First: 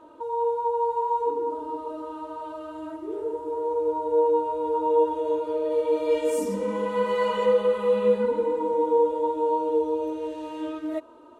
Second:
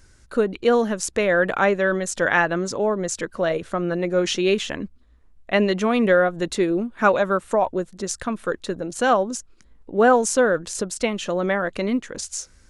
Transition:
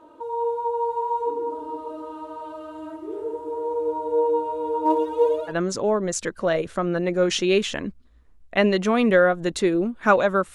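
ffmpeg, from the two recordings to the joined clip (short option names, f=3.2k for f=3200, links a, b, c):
-filter_complex "[0:a]asplit=3[a][b][c];[a]afade=t=out:st=4.84:d=0.02[d];[b]aphaser=in_gain=1:out_gain=1:delay=4.8:decay=0.79:speed=0.34:type=triangular,afade=t=in:st=4.84:d=0.02,afade=t=out:st=5.55:d=0.02[e];[c]afade=t=in:st=5.55:d=0.02[f];[d][e][f]amix=inputs=3:normalize=0,apad=whole_dur=10.54,atrim=end=10.54,atrim=end=5.55,asetpts=PTS-STARTPTS[g];[1:a]atrim=start=2.43:end=7.5,asetpts=PTS-STARTPTS[h];[g][h]acrossfade=d=0.08:c1=tri:c2=tri"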